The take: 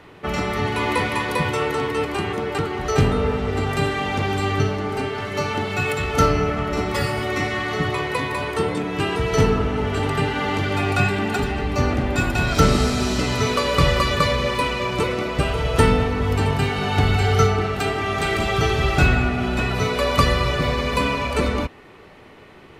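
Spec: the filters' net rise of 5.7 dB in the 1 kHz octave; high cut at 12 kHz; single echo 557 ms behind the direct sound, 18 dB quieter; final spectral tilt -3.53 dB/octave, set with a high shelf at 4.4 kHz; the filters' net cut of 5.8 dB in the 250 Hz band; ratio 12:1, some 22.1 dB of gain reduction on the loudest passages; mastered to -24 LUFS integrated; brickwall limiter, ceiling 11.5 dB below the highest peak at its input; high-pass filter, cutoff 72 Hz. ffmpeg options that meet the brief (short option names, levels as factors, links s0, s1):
-af "highpass=72,lowpass=12000,equalizer=f=250:t=o:g=-8.5,equalizer=f=1000:t=o:g=8,highshelf=f=4400:g=-6.5,acompressor=threshold=0.0282:ratio=12,alimiter=level_in=1.88:limit=0.0631:level=0:latency=1,volume=0.531,aecho=1:1:557:0.126,volume=5.01"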